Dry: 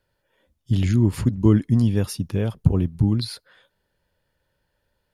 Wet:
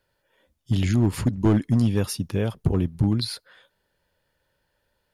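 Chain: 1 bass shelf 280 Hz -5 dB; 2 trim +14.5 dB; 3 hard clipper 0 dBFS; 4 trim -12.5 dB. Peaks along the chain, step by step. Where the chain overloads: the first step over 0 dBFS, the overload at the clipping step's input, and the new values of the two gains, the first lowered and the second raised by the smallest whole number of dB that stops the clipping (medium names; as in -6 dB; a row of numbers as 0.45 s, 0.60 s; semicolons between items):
-7.0 dBFS, +7.5 dBFS, 0.0 dBFS, -12.5 dBFS; step 2, 7.5 dB; step 2 +6.5 dB, step 4 -4.5 dB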